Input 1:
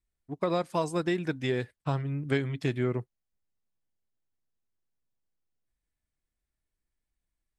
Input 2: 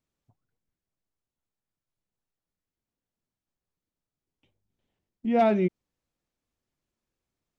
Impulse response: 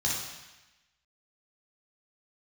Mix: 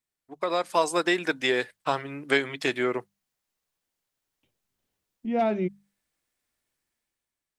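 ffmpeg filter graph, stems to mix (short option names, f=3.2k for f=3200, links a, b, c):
-filter_complex "[0:a]highpass=290,lowshelf=f=420:g=-11,volume=3dB[a];[1:a]volume=-11dB[b];[a][b]amix=inputs=2:normalize=0,dynaudnorm=f=100:g=13:m=8dB,bandreject=f=50:t=h:w=6,bandreject=f=100:t=h:w=6,bandreject=f=150:t=h:w=6,bandreject=f=200:t=h:w=6"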